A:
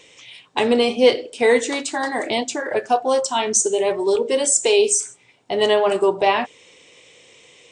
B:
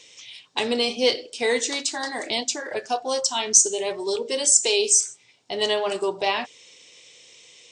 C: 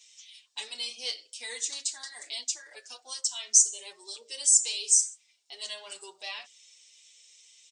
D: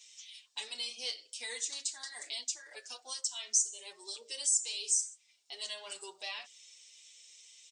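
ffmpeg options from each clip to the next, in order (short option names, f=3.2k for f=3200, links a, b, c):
-af "equalizer=f=5.2k:w=0.82:g=14,volume=-8dB"
-filter_complex "[0:a]aderivative,asplit=2[a][b];[b]adelay=6.3,afreqshift=-1.9[c];[a][c]amix=inputs=2:normalize=1"
-af "acompressor=threshold=-41dB:ratio=1.5"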